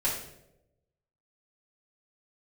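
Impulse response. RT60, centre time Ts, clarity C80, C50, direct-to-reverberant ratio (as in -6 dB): 0.90 s, 37 ms, 7.5 dB, 4.0 dB, -7.5 dB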